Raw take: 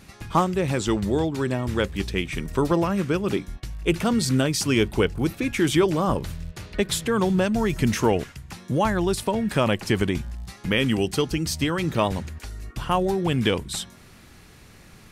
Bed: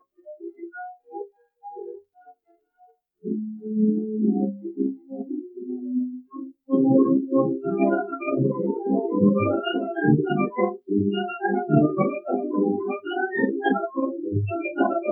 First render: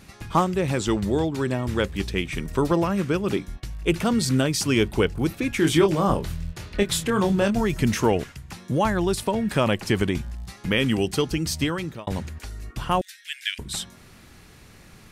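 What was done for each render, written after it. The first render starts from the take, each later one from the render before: 5.60–7.61 s: doubling 25 ms -6.5 dB; 11.65–12.07 s: fade out; 13.01–13.59 s: steep high-pass 1.6 kHz 72 dB/octave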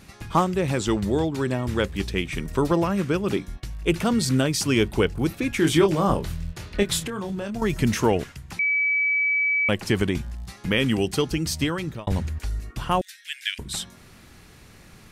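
6.99–7.62 s: compression 5:1, threshold -27 dBFS; 8.59–9.69 s: bleep 2.29 kHz -19 dBFS; 11.87–12.60 s: bass shelf 90 Hz +12 dB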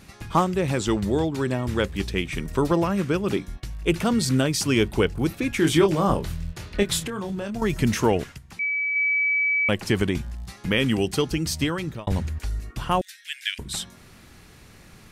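8.38–8.96 s: feedback comb 230 Hz, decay 0.22 s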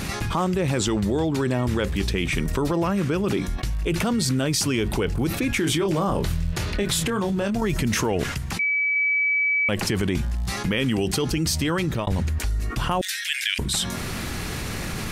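peak limiter -16.5 dBFS, peak gain reduction 9 dB; level flattener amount 70%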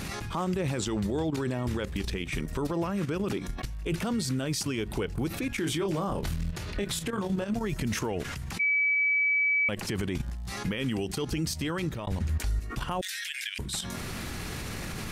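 level held to a coarse grid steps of 12 dB; peak limiter -22 dBFS, peak gain reduction 10.5 dB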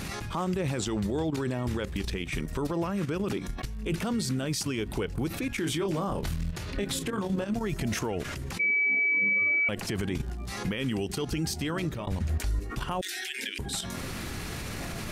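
add bed -23.5 dB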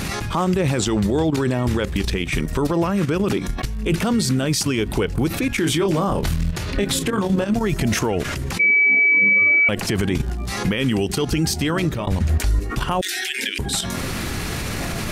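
trim +10 dB

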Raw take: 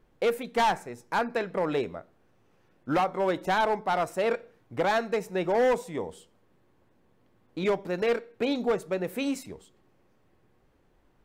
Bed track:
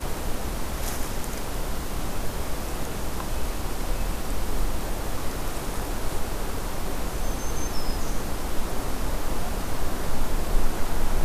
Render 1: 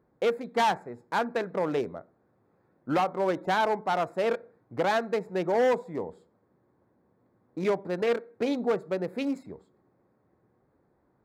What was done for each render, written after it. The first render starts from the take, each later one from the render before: local Wiener filter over 15 samples; high-pass 96 Hz 12 dB/octave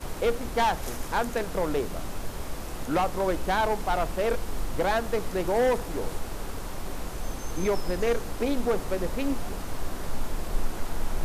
add bed track -5.5 dB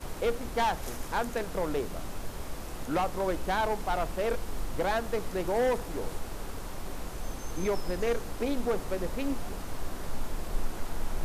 trim -3.5 dB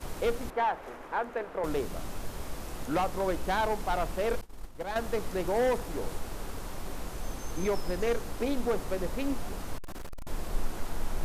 0.50–1.64 s: three-band isolator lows -16 dB, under 290 Hz, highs -20 dB, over 2.5 kHz; 4.41–4.96 s: expander -22 dBFS; 9.78–10.27 s: hard clipper -35.5 dBFS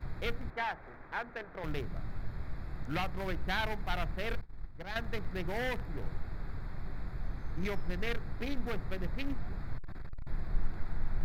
local Wiener filter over 15 samples; graphic EQ 125/250/500/1000/2000/4000/8000 Hz +6/-6/-10/-7/+5/+4/-11 dB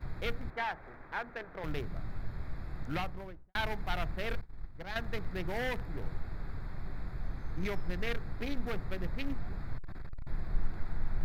2.87–3.55 s: studio fade out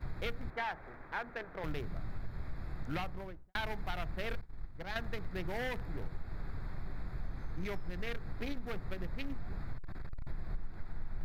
compression 6:1, threshold -32 dBFS, peak gain reduction 11 dB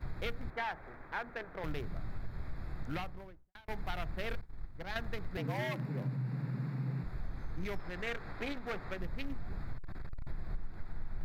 2.86–3.68 s: fade out; 5.37–7.04 s: frequency shift +120 Hz; 7.79–8.98 s: overdrive pedal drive 13 dB, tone 3.5 kHz, clips at -25.5 dBFS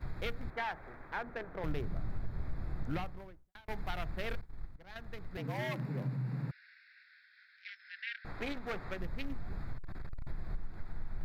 1.16–3.06 s: tilt shelf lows +3 dB; 4.76–5.75 s: fade in, from -15 dB; 6.51–8.25 s: Chebyshev band-pass 1.5–5.3 kHz, order 5

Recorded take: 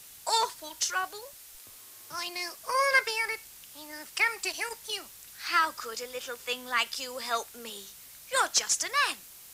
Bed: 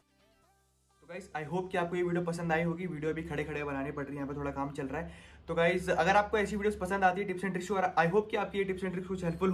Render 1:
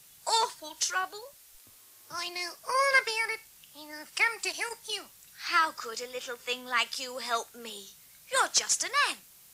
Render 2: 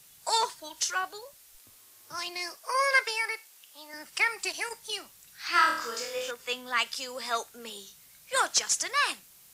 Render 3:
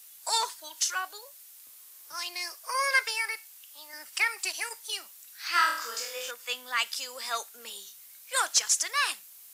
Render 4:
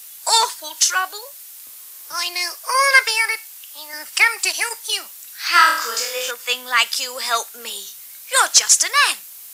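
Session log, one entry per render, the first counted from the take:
noise print and reduce 6 dB
2.57–3.94 s: high-pass 400 Hz; 5.52–6.31 s: flutter echo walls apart 4.4 m, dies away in 0.55 s
high-pass 910 Hz 6 dB/octave; treble shelf 11 kHz +10 dB
trim +12 dB; peak limiter -1 dBFS, peak gain reduction 1 dB

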